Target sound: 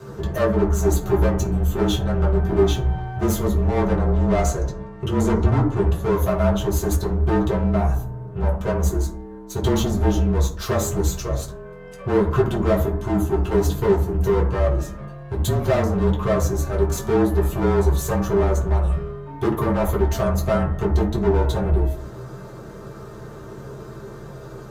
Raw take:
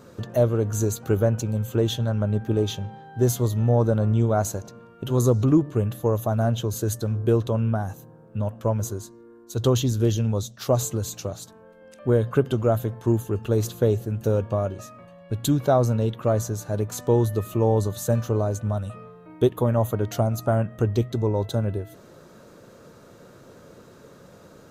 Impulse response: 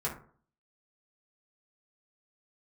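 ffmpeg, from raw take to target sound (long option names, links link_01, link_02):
-filter_complex "[0:a]aeval=exprs='if(lt(val(0),0),0.447*val(0),val(0))':channel_layout=same,asettb=1/sr,asplit=3[link_01][link_02][link_03];[link_01]atrim=end=3.884[link_04];[link_02]atrim=start=3.88:end=6.04,asetpts=PTS-STARTPTS,afade=type=in:duration=0.004:curve=qsin,afade=type=out:start_time=2.156:duration=0.004:curve=qsin,lowpass=9800[link_05];[link_03]atrim=start=6.036[link_06];[link_04][link_05]acrossfade=duration=0.004:curve1=hsin:curve2=qsin[link_07];[link_07][link_06]acrossfade=duration=0.004:curve1=qsin:curve2=hsin,asoftclip=type=tanh:threshold=-28dB,afreqshift=-32[link_08];[1:a]atrim=start_sample=2205,asetrate=40131,aresample=44100[link_09];[link_08][link_09]afir=irnorm=-1:irlink=0,volume=6dB"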